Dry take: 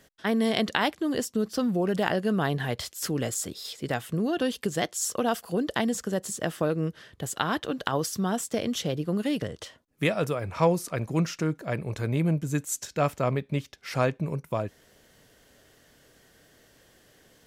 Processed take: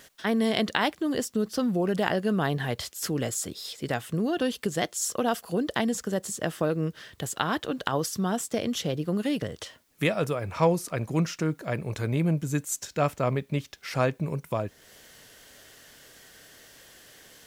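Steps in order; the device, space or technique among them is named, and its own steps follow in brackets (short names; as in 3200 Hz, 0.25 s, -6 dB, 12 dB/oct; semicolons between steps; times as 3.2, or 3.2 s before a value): noise-reduction cassette on a plain deck (mismatched tape noise reduction encoder only; wow and flutter 15 cents; white noise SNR 41 dB)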